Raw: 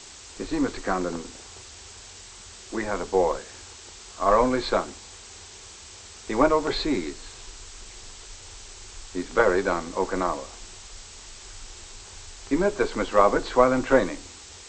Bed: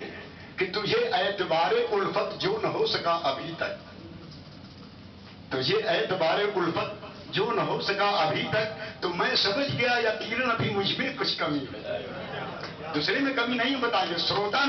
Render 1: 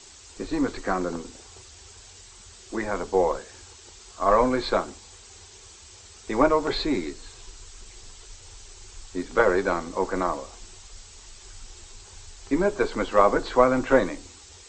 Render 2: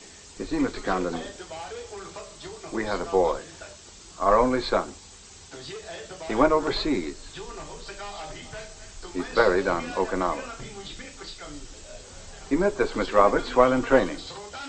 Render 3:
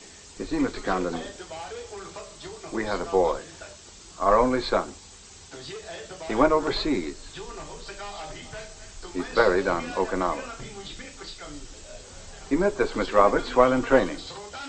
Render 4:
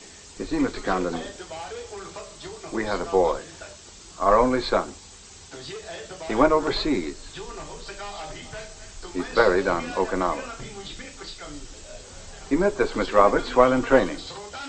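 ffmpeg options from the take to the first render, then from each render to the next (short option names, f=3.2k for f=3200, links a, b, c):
-af "afftdn=nr=6:nf=-45"
-filter_complex "[1:a]volume=-13.5dB[a];[0:a][a]amix=inputs=2:normalize=0"
-af anull
-af "volume=1.5dB"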